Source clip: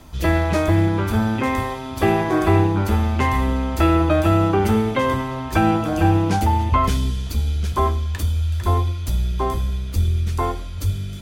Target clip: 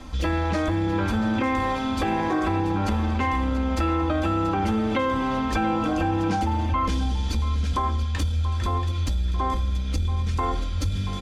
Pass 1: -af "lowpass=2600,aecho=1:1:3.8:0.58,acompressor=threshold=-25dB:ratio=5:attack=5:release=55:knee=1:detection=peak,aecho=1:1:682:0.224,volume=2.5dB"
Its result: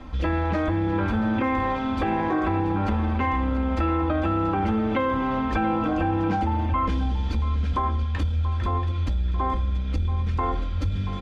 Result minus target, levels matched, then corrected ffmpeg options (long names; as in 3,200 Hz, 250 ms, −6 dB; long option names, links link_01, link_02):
8,000 Hz band −14.0 dB
-af "lowpass=6600,aecho=1:1:3.8:0.58,acompressor=threshold=-25dB:ratio=5:attack=5:release=55:knee=1:detection=peak,aecho=1:1:682:0.224,volume=2.5dB"